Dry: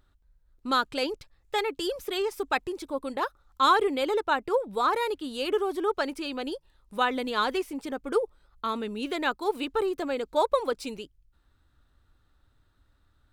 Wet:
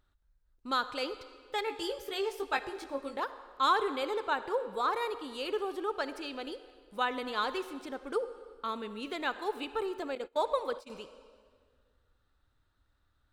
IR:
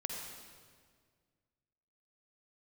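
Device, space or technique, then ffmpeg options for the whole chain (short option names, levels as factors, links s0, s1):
filtered reverb send: -filter_complex "[0:a]asplit=2[s0][s1];[s1]highpass=380,lowpass=8600[s2];[1:a]atrim=start_sample=2205[s3];[s2][s3]afir=irnorm=-1:irlink=0,volume=0.447[s4];[s0][s4]amix=inputs=2:normalize=0,asettb=1/sr,asplit=3[s5][s6][s7];[s5]atrim=end=1.654[s8];[s6]atrim=start=1.65:end=3.2,asetpts=PTS-STARTPTS,afade=t=in:d=0.004:c=qsin,afade=t=out:st=1.546:d=0.004:c=qsin,asplit=2[s9][s10];[s10]adelay=18,volume=0.562[s11];[s9][s11]amix=inputs=2:normalize=0,atrim=end_sample=68355[s12];[s7]atrim=start=3.196[s13];[s8][s12]acrossfade=d=0.004:c1=hsin:c2=qsin[s14];[s14][s13]acrossfade=d=0.004:c1=qsin:c2=hsin,asettb=1/sr,asplit=3[s15][s16][s17];[s15]atrim=end=10.154[s18];[s16]atrim=start=10.15:end=10.9,asetpts=PTS-STARTPTS,afade=t=in:d=0.004:c=qsin,afade=t=out:st=0.746:d=0.004:c=qsin,agate=range=0.0631:threshold=0.0316:ratio=16:detection=peak[s19];[s17]atrim=start=10.896[s20];[s18][s19]acrossfade=d=0.004:c1=hsin:c2=qsin[s21];[s21][s20]acrossfade=d=0.004:c1=qsin:c2=hsin,volume=0.398"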